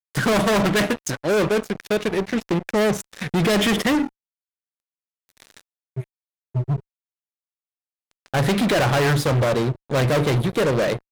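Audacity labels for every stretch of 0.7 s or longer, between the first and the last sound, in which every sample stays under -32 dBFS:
4.070000	5.400000	silence
6.800000	8.260000	silence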